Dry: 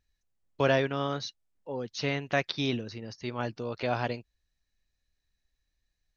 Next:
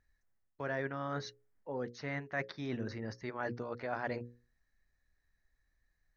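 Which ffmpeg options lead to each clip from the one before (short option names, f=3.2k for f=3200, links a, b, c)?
-af "bandreject=f=60:t=h:w=6,bandreject=f=120:t=h:w=6,bandreject=f=180:t=h:w=6,bandreject=f=240:t=h:w=6,bandreject=f=300:t=h:w=6,bandreject=f=360:t=h:w=6,bandreject=f=420:t=h:w=6,bandreject=f=480:t=h:w=6,bandreject=f=540:t=h:w=6,areverse,acompressor=threshold=-37dB:ratio=6,areverse,highshelf=f=2.3k:t=q:w=3:g=-6.5,volume=2dB"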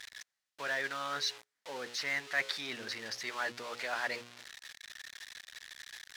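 -filter_complex "[0:a]aeval=exprs='val(0)+0.5*0.00596*sgn(val(0))':c=same,bandpass=f=3.9k:t=q:w=0.87:csg=0,asplit=2[a][b];[b]acrusher=bits=4:mode=log:mix=0:aa=0.000001,volume=-10.5dB[c];[a][c]amix=inputs=2:normalize=0,volume=9dB"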